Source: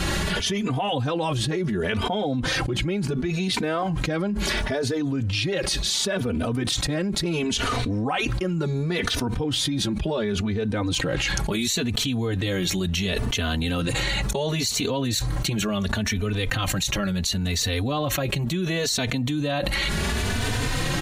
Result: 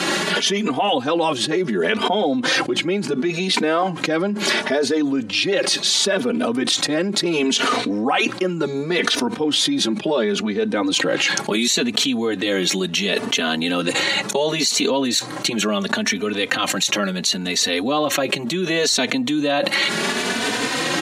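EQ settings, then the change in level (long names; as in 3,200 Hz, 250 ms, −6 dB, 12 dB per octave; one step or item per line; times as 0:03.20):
high-pass filter 220 Hz 24 dB per octave
high-frequency loss of the air 59 metres
high-shelf EQ 8,300 Hz +9 dB
+7.0 dB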